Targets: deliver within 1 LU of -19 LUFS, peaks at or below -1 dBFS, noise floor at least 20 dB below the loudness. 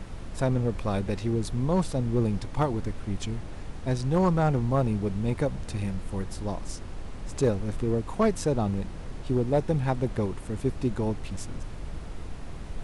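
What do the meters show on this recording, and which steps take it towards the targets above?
clipped samples 0.4%; clipping level -15.5 dBFS; noise floor -38 dBFS; noise floor target -49 dBFS; loudness -28.5 LUFS; peak level -15.5 dBFS; loudness target -19.0 LUFS
-> clip repair -15.5 dBFS; noise print and reduce 11 dB; trim +9.5 dB

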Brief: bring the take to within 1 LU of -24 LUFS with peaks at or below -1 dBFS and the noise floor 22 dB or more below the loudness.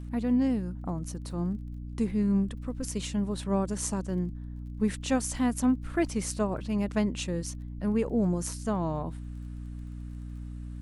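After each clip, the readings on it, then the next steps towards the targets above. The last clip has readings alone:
tick rate 25 per s; hum 60 Hz; highest harmonic 300 Hz; hum level -36 dBFS; loudness -30.0 LUFS; peak level -14.5 dBFS; loudness target -24.0 LUFS
-> de-click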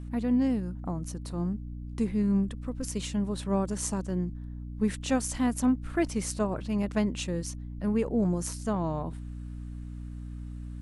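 tick rate 0.092 per s; hum 60 Hz; highest harmonic 300 Hz; hum level -36 dBFS
-> hum notches 60/120/180/240/300 Hz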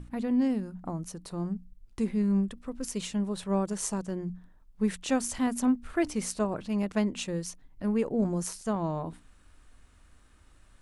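hum not found; loudness -31.0 LUFS; peak level -14.5 dBFS; loudness target -24.0 LUFS
-> trim +7 dB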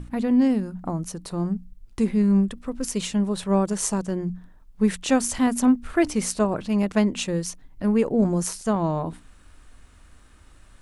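loudness -24.0 LUFS; peak level -7.5 dBFS; noise floor -51 dBFS

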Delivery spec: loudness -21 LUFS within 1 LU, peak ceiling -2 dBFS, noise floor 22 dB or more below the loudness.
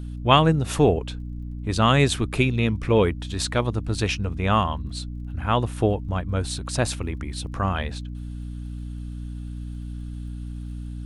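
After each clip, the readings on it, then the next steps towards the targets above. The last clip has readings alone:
tick rate 30 per s; hum 60 Hz; highest harmonic 300 Hz; hum level -30 dBFS; loudness -23.5 LUFS; peak level -2.0 dBFS; loudness target -21.0 LUFS
-> de-click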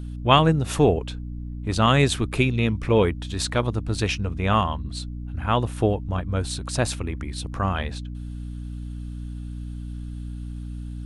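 tick rate 0 per s; hum 60 Hz; highest harmonic 300 Hz; hum level -30 dBFS
-> de-hum 60 Hz, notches 5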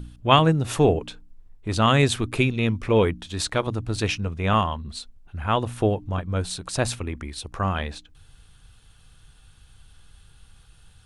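hum not found; loudness -23.5 LUFS; peak level -1.5 dBFS; loudness target -21.0 LUFS
-> trim +2.5 dB; peak limiter -2 dBFS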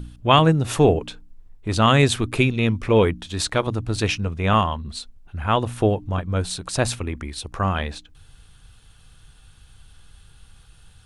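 loudness -21.0 LUFS; peak level -2.0 dBFS; noise floor -51 dBFS

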